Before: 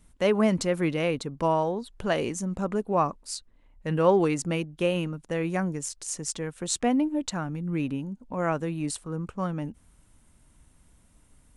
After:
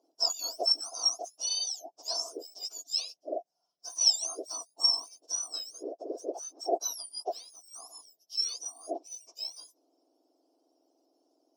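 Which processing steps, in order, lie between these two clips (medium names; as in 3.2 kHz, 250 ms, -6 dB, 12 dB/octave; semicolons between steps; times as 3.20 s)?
spectrum inverted on a logarithmic axis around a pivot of 1.7 kHz; two resonant band-passes 1.9 kHz, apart 3 oct; trim +7.5 dB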